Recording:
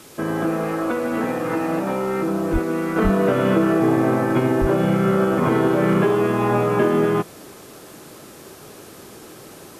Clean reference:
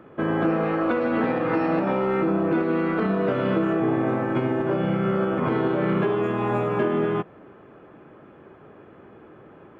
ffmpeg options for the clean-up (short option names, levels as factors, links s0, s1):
-filter_complex "[0:a]asplit=3[s0][s1][s2];[s0]afade=t=out:st=2.52:d=0.02[s3];[s1]highpass=f=140:w=0.5412,highpass=f=140:w=1.3066,afade=t=in:st=2.52:d=0.02,afade=t=out:st=2.64:d=0.02[s4];[s2]afade=t=in:st=2.64:d=0.02[s5];[s3][s4][s5]amix=inputs=3:normalize=0,asplit=3[s6][s7][s8];[s6]afade=t=out:st=3.03:d=0.02[s9];[s7]highpass=f=140:w=0.5412,highpass=f=140:w=1.3066,afade=t=in:st=3.03:d=0.02,afade=t=out:st=3.15:d=0.02[s10];[s8]afade=t=in:st=3.15:d=0.02[s11];[s9][s10][s11]amix=inputs=3:normalize=0,asplit=3[s12][s13][s14];[s12]afade=t=out:st=4.6:d=0.02[s15];[s13]highpass=f=140:w=0.5412,highpass=f=140:w=1.3066,afade=t=in:st=4.6:d=0.02,afade=t=out:st=4.72:d=0.02[s16];[s14]afade=t=in:st=4.72:d=0.02[s17];[s15][s16][s17]amix=inputs=3:normalize=0,afwtdn=0.0056,asetnsamples=n=441:p=0,asendcmd='2.96 volume volume -5dB',volume=1"